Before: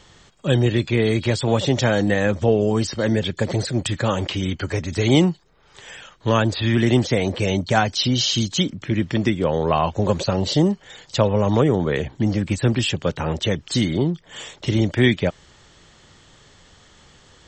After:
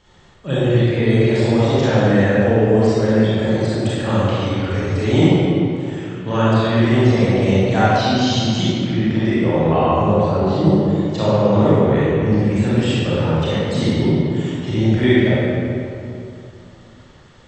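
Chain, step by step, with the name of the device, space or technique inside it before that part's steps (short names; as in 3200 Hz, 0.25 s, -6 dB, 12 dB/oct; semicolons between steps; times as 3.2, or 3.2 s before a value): 10.08–10.65 LPF 1600 Hz 6 dB/oct; swimming-pool hall (reverb RT60 2.7 s, pre-delay 28 ms, DRR -10 dB; high shelf 4000 Hz -7.5 dB); gain -6.5 dB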